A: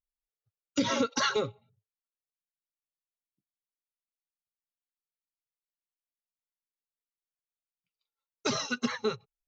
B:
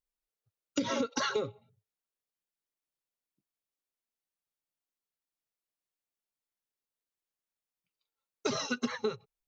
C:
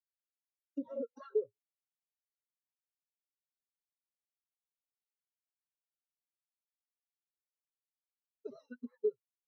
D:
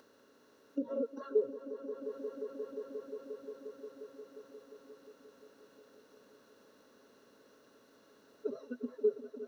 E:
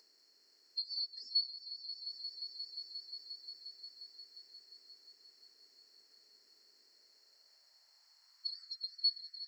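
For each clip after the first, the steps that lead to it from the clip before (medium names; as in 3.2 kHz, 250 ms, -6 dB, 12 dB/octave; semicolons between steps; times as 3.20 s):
peaking EQ 400 Hz +4.5 dB 2 oct; compression, threshold -28 dBFS, peak gain reduction 9 dB
dynamic bell 530 Hz, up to +5 dB, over -43 dBFS, Q 1.3; vibrato 11 Hz 33 cents; spectral contrast expander 2.5:1; trim -7.5 dB
spectral levelling over time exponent 0.6; upward compressor, threshold -55 dBFS; echo with a slow build-up 177 ms, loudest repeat 5, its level -13 dB; trim +2 dB
split-band scrambler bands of 4 kHz; high-pass sweep 390 Hz -> 1.7 kHz, 6.86–9.17 s; trim -4 dB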